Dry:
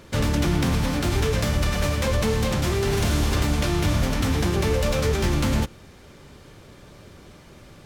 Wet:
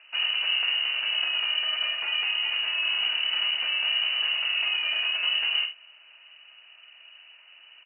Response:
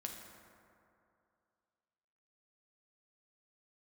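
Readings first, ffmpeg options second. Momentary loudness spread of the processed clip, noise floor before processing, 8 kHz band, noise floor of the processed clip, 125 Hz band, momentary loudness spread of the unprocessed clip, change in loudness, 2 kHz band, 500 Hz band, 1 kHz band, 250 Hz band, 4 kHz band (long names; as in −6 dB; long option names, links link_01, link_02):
2 LU, −48 dBFS, below −40 dB, −53 dBFS, below −40 dB, 1 LU, −1.0 dB, +4.5 dB, −25.0 dB, −11.0 dB, below −35 dB, +10.5 dB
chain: -af "lowpass=frequency=2600:width_type=q:width=0.5098,lowpass=frequency=2600:width_type=q:width=0.6013,lowpass=frequency=2600:width_type=q:width=0.9,lowpass=frequency=2600:width_type=q:width=2.563,afreqshift=-3000,highpass=frequency=1100:poles=1,aecho=1:1:46|74:0.355|0.178,volume=-5dB"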